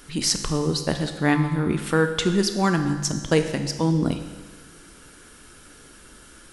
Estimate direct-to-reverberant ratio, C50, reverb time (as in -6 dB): 6.5 dB, 8.0 dB, 1.4 s